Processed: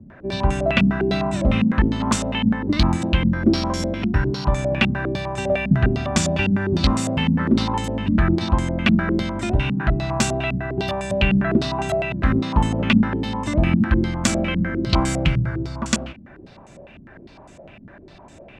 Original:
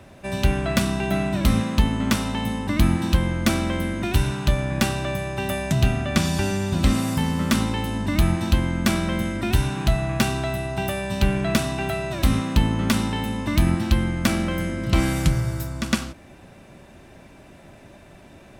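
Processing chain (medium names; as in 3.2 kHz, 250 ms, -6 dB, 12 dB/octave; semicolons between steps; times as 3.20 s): 3.29–4.45 s: sorted samples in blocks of 8 samples; step-sequenced low-pass 9.9 Hz 220–7400 Hz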